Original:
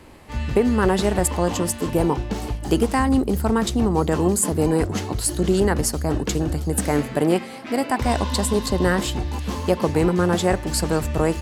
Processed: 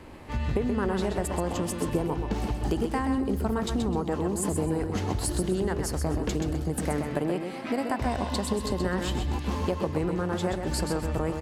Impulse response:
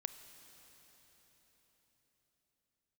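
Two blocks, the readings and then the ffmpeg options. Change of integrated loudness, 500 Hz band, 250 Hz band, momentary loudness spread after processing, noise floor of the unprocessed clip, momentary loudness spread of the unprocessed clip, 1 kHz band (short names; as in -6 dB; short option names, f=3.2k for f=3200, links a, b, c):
-7.5 dB, -8.0 dB, -7.0 dB, 2 LU, -34 dBFS, 6 LU, -7.5 dB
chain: -filter_complex "[0:a]highshelf=f=4.2k:g=-7.5,acompressor=threshold=-25dB:ratio=6,asplit=2[a][b];[b]aecho=0:1:128|256|384:0.473|0.128|0.0345[c];[a][c]amix=inputs=2:normalize=0"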